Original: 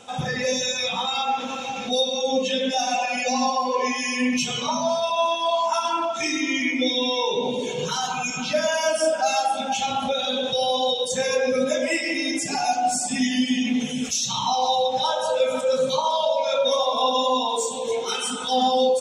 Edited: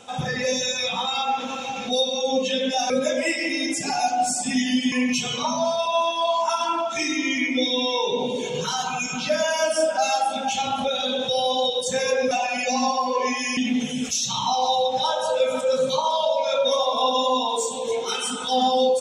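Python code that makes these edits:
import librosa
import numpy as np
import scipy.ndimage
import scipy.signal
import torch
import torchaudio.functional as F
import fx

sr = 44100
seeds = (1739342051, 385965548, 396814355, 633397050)

y = fx.edit(x, sr, fx.swap(start_s=2.9, length_s=1.26, other_s=11.55, other_length_s=2.02), tone=tone)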